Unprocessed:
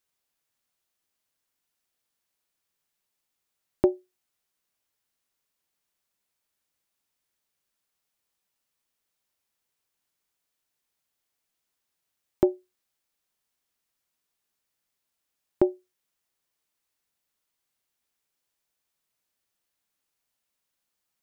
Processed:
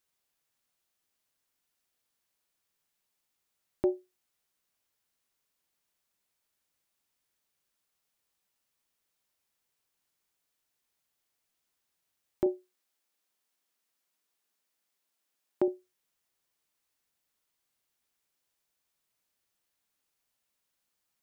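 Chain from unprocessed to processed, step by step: 12.46–15.68 HPF 200 Hz 12 dB/oct; limiter -17.5 dBFS, peak gain reduction 9 dB

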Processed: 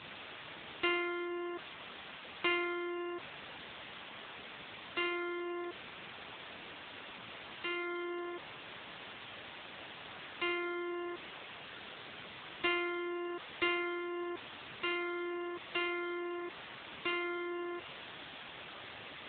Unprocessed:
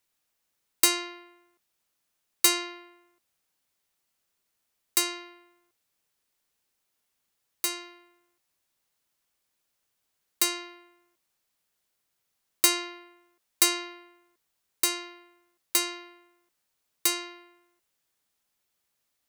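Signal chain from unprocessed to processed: zero-crossing step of -27.5 dBFS; gain -4.5 dB; AMR-NB 7.95 kbps 8000 Hz

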